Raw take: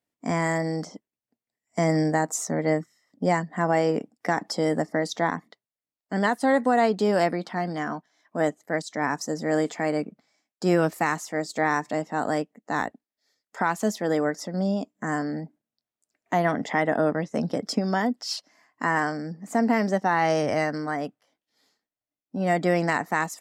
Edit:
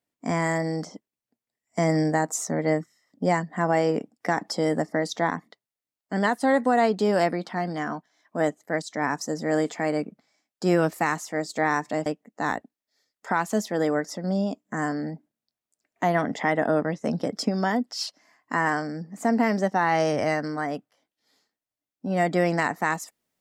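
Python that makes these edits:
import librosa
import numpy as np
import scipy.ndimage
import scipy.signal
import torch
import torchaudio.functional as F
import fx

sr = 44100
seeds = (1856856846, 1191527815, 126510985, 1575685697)

y = fx.edit(x, sr, fx.cut(start_s=12.06, length_s=0.3), tone=tone)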